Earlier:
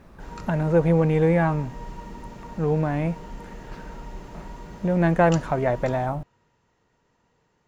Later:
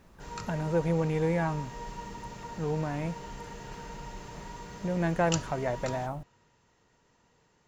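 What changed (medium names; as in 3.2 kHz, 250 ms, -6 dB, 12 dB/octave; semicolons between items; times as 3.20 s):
speech -8.5 dB; master: add treble shelf 3.7 kHz +7.5 dB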